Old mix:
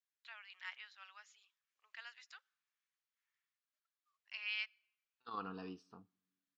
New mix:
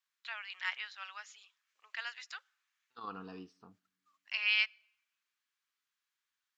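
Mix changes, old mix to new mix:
first voice +11.0 dB; second voice: entry -2.30 s

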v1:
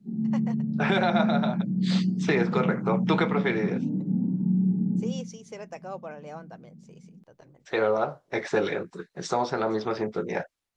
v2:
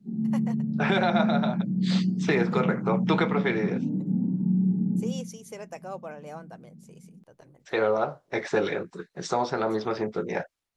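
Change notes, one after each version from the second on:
first voice: remove LPF 6500 Hz 24 dB/oct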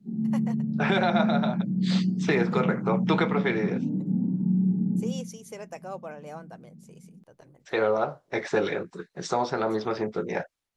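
none

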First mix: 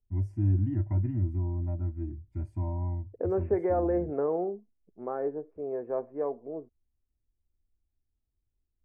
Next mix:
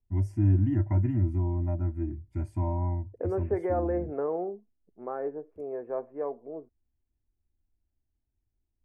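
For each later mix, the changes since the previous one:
first voice +7.5 dB; master: add tilt +1.5 dB/oct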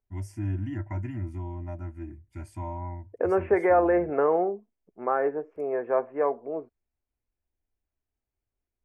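second voice +11.5 dB; master: add tilt shelf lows -8 dB, about 920 Hz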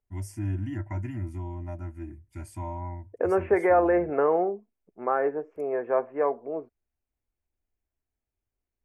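master: add high shelf 6700 Hz +10 dB

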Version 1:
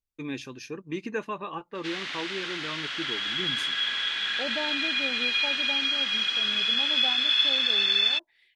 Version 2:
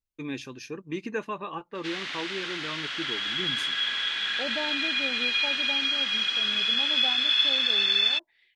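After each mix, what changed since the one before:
second voice: add air absorption 77 m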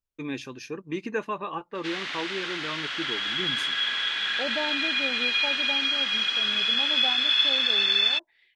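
master: add bell 840 Hz +3 dB 2.8 oct

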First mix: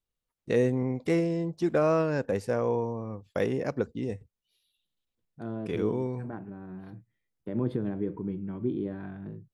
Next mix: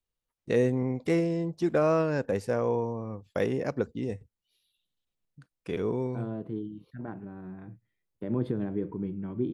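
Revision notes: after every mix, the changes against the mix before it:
second voice: entry +0.75 s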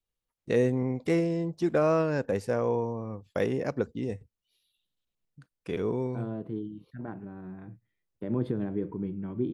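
none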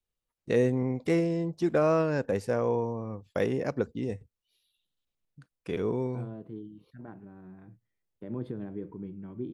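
second voice -6.5 dB

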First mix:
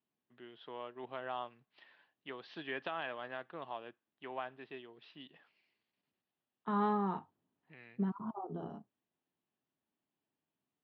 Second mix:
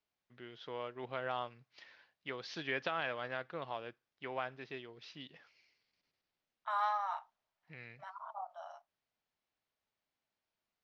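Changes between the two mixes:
second voice: add brick-wall FIR high-pass 570 Hz; master: remove speaker cabinet 200–3300 Hz, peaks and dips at 510 Hz -6 dB, 1400 Hz -5 dB, 2200 Hz -8 dB

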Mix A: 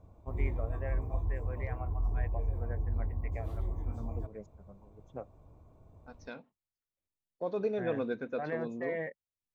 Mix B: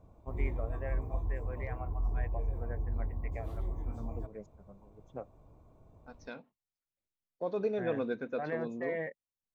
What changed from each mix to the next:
master: add bell 83 Hz -5 dB 0.68 oct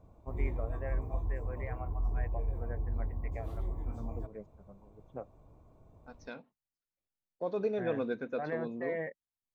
first voice: add LPF 2600 Hz 12 dB/oct

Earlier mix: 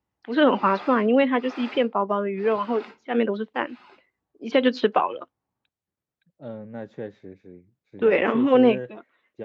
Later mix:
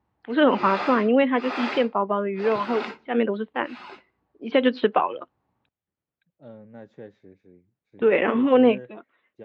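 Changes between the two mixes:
first voice: add LPF 3700 Hz 24 dB/oct; second voice -7.5 dB; background +10.0 dB

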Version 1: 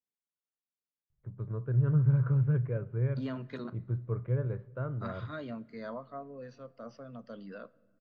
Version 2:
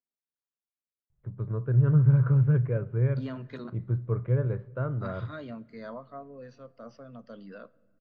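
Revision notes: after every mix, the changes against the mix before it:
first voice +5.0 dB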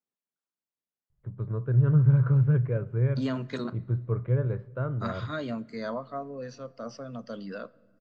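second voice +7.0 dB; master: remove LPF 3700 Hz 12 dB/oct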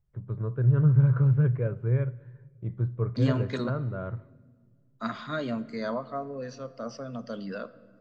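first voice: entry -1.10 s; second voice: send +8.5 dB

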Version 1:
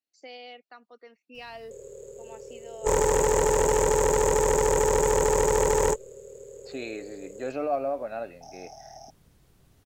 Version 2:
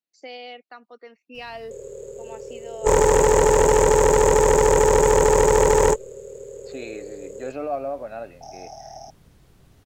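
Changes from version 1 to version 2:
first voice +6.0 dB; background +6.5 dB; master: add high shelf 6600 Hz -5.5 dB

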